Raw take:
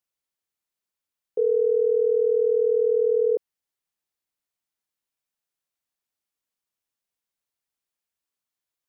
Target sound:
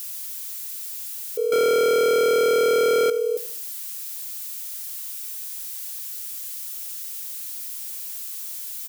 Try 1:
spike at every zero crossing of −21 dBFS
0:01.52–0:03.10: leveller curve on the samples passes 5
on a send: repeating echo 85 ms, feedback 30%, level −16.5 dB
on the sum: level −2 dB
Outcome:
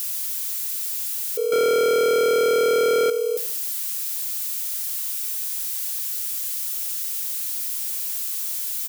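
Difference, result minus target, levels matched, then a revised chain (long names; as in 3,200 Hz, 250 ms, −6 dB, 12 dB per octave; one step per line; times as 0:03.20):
spike at every zero crossing: distortion +6 dB
spike at every zero crossing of −27 dBFS
0:01.52–0:03.10: leveller curve on the samples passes 5
on a send: repeating echo 85 ms, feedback 30%, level −16.5 dB
on the sum: level −2 dB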